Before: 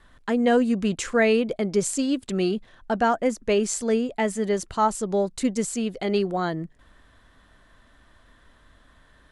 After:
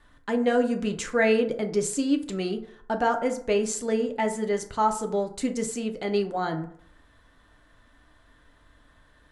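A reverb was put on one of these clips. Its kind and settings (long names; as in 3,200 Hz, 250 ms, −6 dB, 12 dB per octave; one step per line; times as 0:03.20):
feedback delay network reverb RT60 0.6 s, low-frequency decay 0.8×, high-frequency decay 0.45×, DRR 4.5 dB
level −3.5 dB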